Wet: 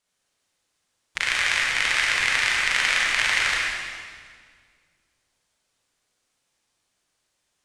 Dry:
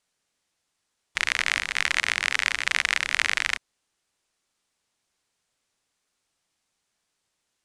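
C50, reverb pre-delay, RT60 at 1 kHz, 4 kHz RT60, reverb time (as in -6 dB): -2.5 dB, 33 ms, 1.8 s, 1.6 s, 1.9 s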